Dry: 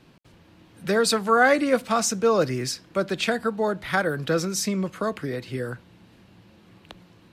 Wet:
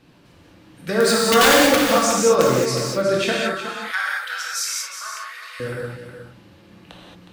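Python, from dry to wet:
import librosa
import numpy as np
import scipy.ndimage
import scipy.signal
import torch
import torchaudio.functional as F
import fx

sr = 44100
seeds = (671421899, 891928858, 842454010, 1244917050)

y = fx.highpass(x, sr, hz=1200.0, slope=24, at=(3.32, 5.6))
y = (np.mod(10.0 ** (10.5 / 20.0) * y + 1.0, 2.0) - 1.0) / 10.0 ** (10.5 / 20.0)
y = y + 10.0 ** (-10.0 / 20.0) * np.pad(y, (int(365 * sr / 1000.0), 0))[:len(y)]
y = fx.rev_gated(y, sr, seeds[0], gate_ms=250, shape='flat', drr_db=-4.5)
y = y * librosa.db_to_amplitude(-1.0)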